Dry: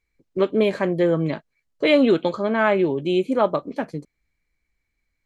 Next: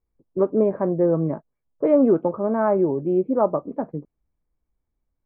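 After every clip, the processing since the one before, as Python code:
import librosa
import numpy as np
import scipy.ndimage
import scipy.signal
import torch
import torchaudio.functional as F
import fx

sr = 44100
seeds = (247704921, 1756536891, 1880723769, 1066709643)

y = scipy.signal.sosfilt(scipy.signal.butter(4, 1100.0, 'lowpass', fs=sr, output='sos'), x)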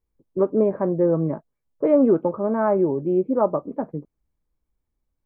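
y = fx.notch(x, sr, hz=700.0, q=18.0)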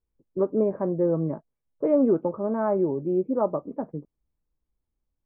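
y = fx.high_shelf(x, sr, hz=2100.0, db=-9.5)
y = y * librosa.db_to_amplitude(-3.5)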